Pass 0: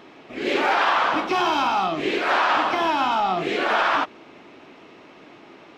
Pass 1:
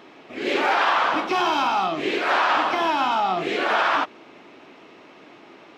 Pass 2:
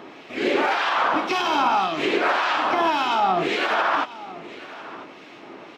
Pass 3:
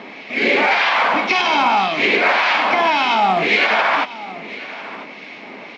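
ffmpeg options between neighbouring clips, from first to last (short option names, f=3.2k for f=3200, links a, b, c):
-af "lowshelf=f=110:g=-9"
-filter_complex "[0:a]alimiter=limit=-17dB:level=0:latency=1:release=173,acrossover=split=1700[a][b];[a]aeval=exprs='val(0)*(1-0.5/2+0.5/2*cos(2*PI*1.8*n/s))':c=same[c];[b]aeval=exprs='val(0)*(1-0.5/2-0.5/2*cos(2*PI*1.8*n/s))':c=same[d];[c][d]amix=inputs=2:normalize=0,aecho=1:1:996:0.133,volume=7dB"
-af "asoftclip=type=tanh:threshold=-11.5dB,highpass=170,equalizer=f=210:t=q:w=4:g=7,equalizer=f=340:t=q:w=4:g=-8,equalizer=f=1.3k:t=q:w=4:g=-5,equalizer=f=2.2k:t=q:w=4:g=10,equalizer=f=4.4k:t=q:w=4:g=3,lowpass=f=6.1k:w=0.5412,lowpass=f=6.1k:w=1.3066,volume=6dB" -ar 16000 -c:a pcm_alaw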